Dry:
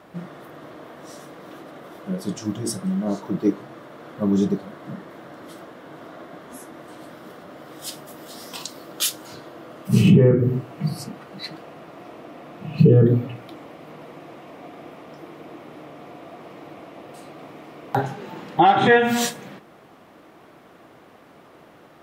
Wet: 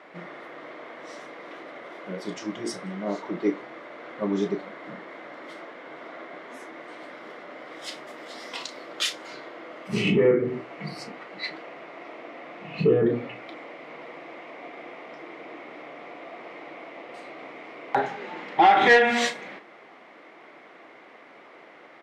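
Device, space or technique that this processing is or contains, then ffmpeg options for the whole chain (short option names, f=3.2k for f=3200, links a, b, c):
intercom: -filter_complex "[0:a]highpass=340,lowpass=4.7k,equalizer=f=2.1k:t=o:w=0.33:g=11,asoftclip=type=tanh:threshold=-8.5dB,asplit=2[a][b];[b]adelay=34,volume=-12dB[c];[a][c]amix=inputs=2:normalize=0"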